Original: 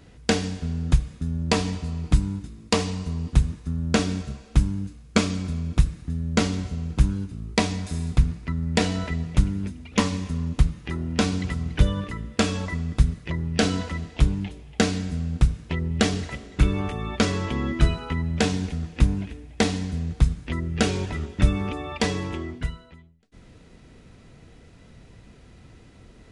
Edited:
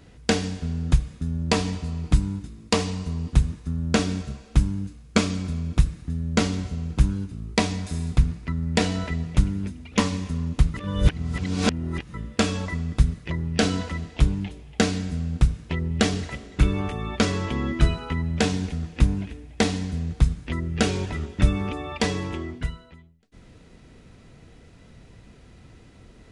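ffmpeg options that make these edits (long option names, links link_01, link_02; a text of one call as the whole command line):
ffmpeg -i in.wav -filter_complex "[0:a]asplit=3[link_01][link_02][link_03];[link_01]atrim=end=10.742[link_04];[link_02]atrim=start=10.738:end=12.142,asetpts=PTS-STARTPTS,areverse[link_05];[link_03]atrim=start=12.138[link_06];[link_04][link_05]acrossfade=duration=0.004:curve1=hsin:curve2=hsin[link_07];[link_07][link_06]acrossfade=duration=0.004:curve1=hsin:curve2=hsin" out.wav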